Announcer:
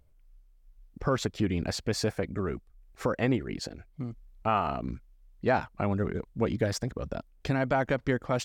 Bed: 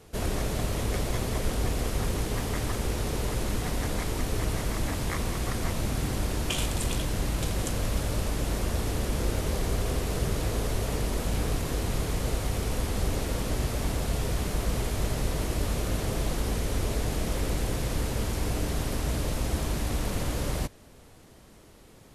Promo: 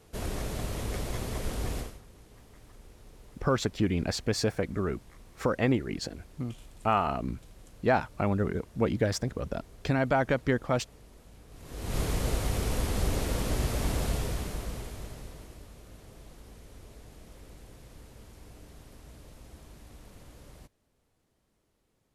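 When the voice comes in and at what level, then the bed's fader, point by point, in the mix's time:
2.40 s, +1.0 dB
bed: 0:01.79 −5 dB
0:02.02 −25 dB
0:11.48 −25 dB
0:11.98 −0.5 dB
0:14.06 −0.5 dB
0:15.71 −21.5 dB

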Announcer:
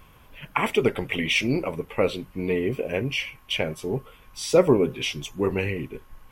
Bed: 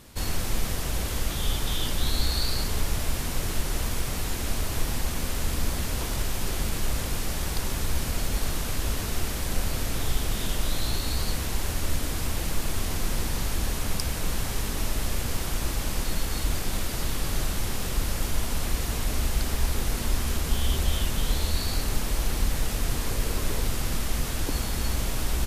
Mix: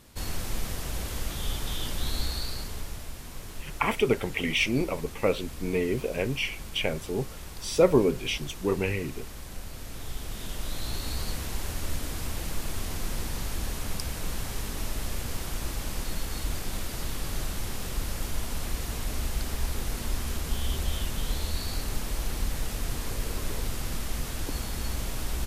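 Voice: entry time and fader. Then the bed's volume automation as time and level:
3.25 s, −2.5 dB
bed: 0:02.20 −4.5 dB
0:03.14 −12.5 dB
0:09.71 −12.5 dB
0:11.05 −4.5 dB

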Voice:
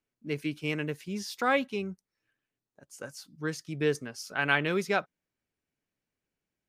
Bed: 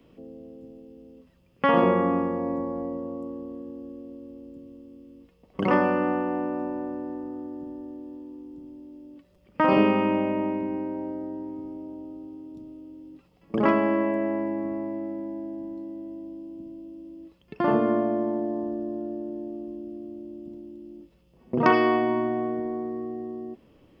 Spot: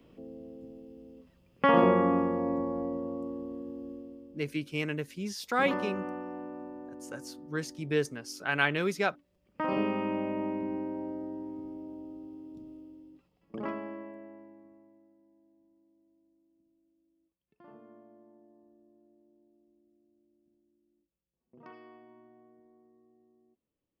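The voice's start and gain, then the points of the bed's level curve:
4.10 s, −1.0 dB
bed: 0:03.93 −2 dB
0:04.54 −12.5 dB
0:09.41 −12.5 dB
0:10.69 −4.5 dB
0:12.76 −4.5 dB
0:15.15 −32 dB

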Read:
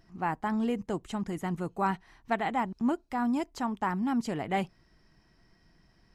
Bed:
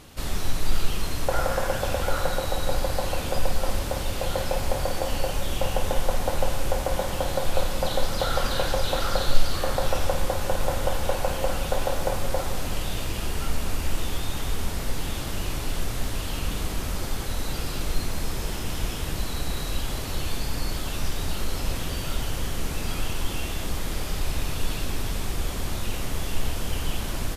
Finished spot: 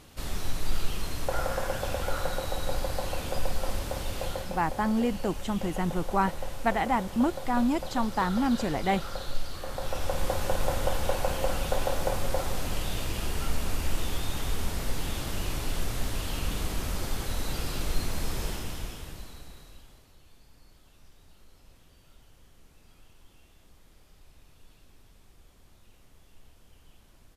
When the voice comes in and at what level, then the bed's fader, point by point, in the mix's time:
4.35 s, +3.0 dB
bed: 0:04.25 −5 dB
0:04.57 −11.5 dB
0:09.63 −11.5 dB
0:10.31 −2.5 dB
0:18.46 −2.5 dB
0:20.17 −29 dB

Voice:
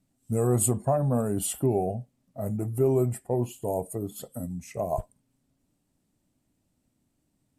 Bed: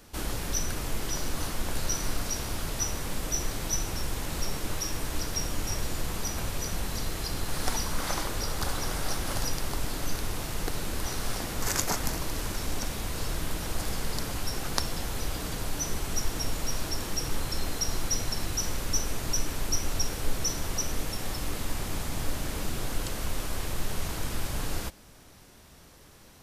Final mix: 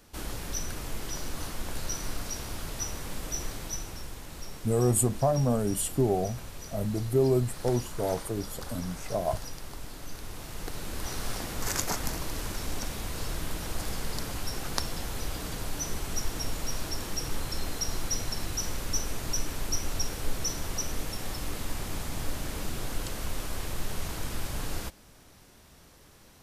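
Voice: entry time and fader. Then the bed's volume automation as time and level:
4.35 s, −0.5 dB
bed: 0:03.47 −4 dB
0:04.23 −10 dB
0:10.07 −10 dB
0:11.17 −2 dB

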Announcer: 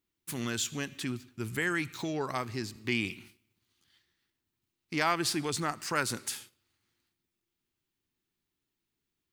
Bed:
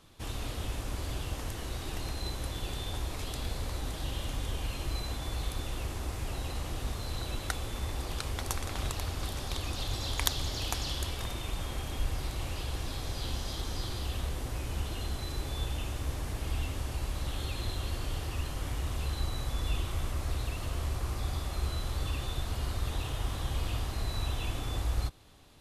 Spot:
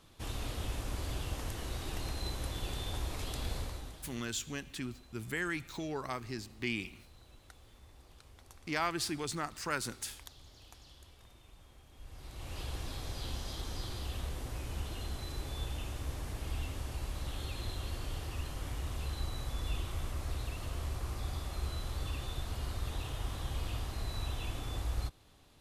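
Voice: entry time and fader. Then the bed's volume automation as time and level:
3.75 s, −5.0 dB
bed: 0:03.58 −2 dB
0:04.31 −22.5 dB
0:11.91 −22.5 dB
0:12.60 −4.5 dB

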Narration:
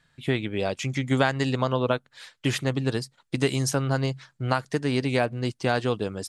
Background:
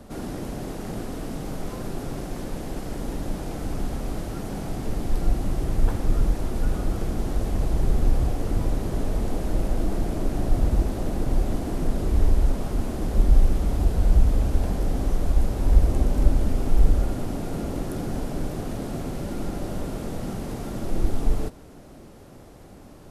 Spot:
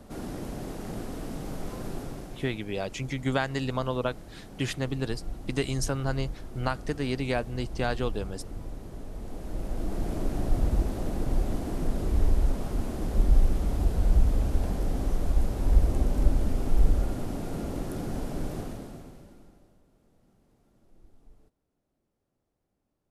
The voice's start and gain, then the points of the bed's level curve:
2.15 s, −5.0 dB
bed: 0:01.96 −4 dB
0:02.64 −14.5 dB
0:09.10 −14.5 dB
0:10.12 −4 dB
0:18.59 −4 dB
0:19.83 −34 dB

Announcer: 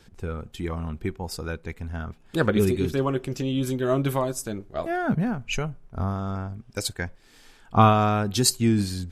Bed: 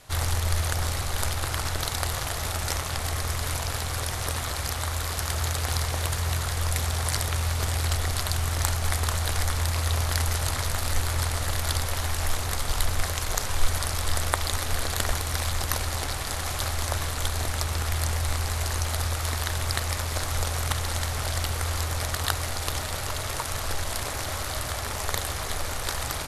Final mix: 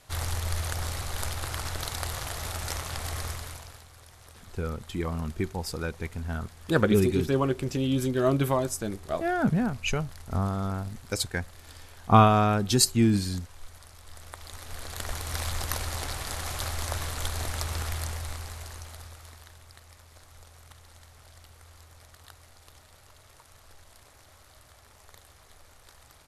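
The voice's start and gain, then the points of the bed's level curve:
4.35 s, −0.5 dB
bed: 0:03.26 −5 dB
0:03.90 −22.5 dB
0:14.03 −22.5 dB
0:15.38 −4 dB
0:17.81 −4 dB
0:19.68 −24.5 dB

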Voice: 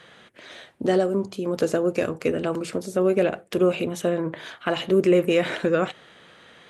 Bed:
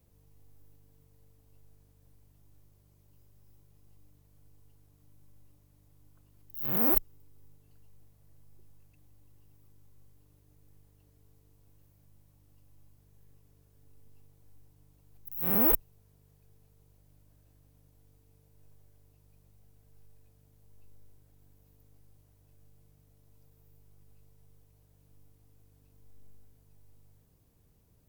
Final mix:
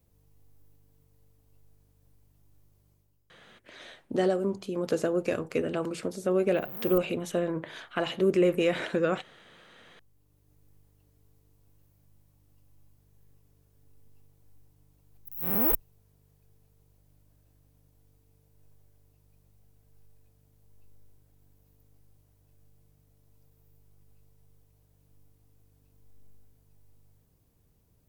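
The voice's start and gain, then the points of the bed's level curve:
3.30 s, −5.0 dB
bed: 0:02.91 −1.5 dB
0:03.22 −12 dB
0:09.66 −12 dB
0:10.54 −1 dB

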